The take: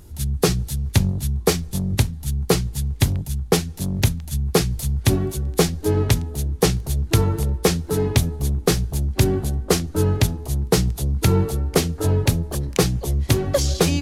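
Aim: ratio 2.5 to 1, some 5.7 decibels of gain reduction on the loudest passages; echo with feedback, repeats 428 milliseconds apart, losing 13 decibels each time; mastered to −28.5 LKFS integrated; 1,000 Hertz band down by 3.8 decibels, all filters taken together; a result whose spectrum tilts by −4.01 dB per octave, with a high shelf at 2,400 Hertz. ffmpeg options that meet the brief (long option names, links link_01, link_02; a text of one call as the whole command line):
ffmpeg -i in.wav -af "equalizer=frequency=1000:width_type=o:gain=-6.5,highshelf=frequency=2400:gain=6.5,acompressor=threshold=-20dB:ratio=2.5,aecho=1:1:428|856|1284:0.224|0.0493|0.0108,volume=-4.5dB" out.wav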